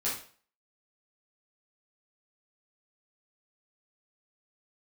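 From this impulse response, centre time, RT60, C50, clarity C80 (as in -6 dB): 38 ms, 0.45 s, 4.0 dB, 10.0 dB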